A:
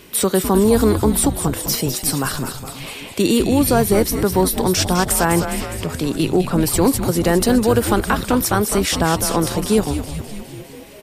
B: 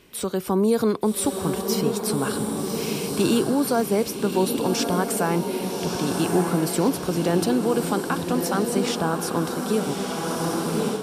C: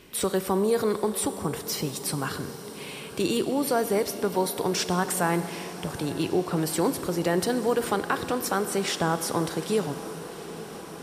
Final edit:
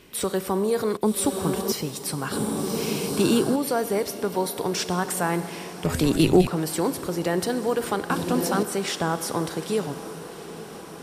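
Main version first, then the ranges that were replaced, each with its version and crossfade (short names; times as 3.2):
C
0.97–1.72 from B
2.32–3.56 from B
5.85–6.47 from A
8.1–8.63 from B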